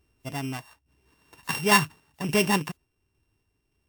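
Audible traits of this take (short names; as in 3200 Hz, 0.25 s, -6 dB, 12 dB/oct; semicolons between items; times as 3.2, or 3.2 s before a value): a buzz of ramps at a fixed pitch in blocks of 16 samples; random-step tremolo; WMA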